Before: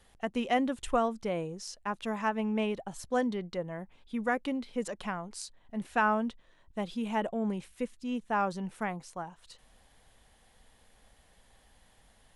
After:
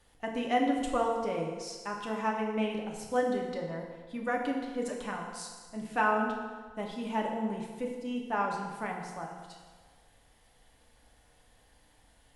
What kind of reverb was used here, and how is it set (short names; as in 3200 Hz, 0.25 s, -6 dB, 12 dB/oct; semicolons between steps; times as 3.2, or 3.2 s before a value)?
FDN reverb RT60 1.5 s, low-frequency decay 0.9×, high-frequency decay 0.8×, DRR -0.5 dB; gain -3.5 dB